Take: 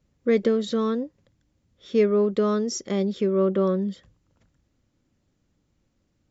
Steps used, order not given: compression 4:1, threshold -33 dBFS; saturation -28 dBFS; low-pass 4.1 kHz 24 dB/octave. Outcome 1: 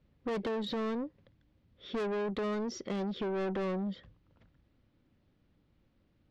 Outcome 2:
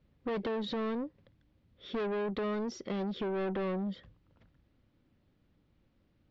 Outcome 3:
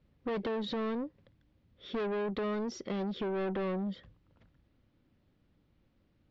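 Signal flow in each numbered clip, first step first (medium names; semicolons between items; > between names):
low-pass > saturation > compression; saturation > compression > low-pass; saturation > low-pass > compression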